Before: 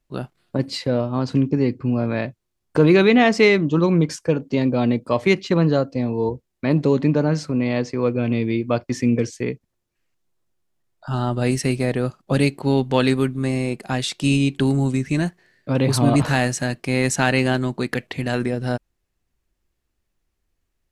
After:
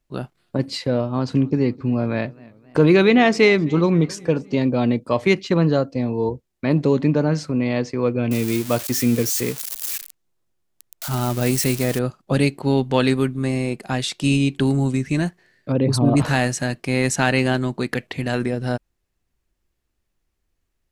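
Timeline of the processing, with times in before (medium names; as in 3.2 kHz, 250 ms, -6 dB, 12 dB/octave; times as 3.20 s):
1.14–4.55 s: modulated delay 260 ms, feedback 51%, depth 148 cents, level -24 dB
8.31–11.99 s: zero-crossing glitches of -17 dBFS
15.72–16.17 s: resonances exaggerated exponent 1.5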